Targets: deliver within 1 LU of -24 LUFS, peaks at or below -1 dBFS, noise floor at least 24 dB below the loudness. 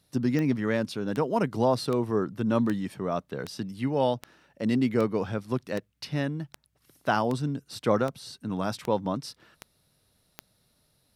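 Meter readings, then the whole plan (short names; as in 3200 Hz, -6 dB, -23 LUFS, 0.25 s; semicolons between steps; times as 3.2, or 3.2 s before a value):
clicks 14; loudness -28.5 LUFS; peak -10.0 dBFS; loudness target -24.0 LUFS
-> de-click; gain +4.5 dB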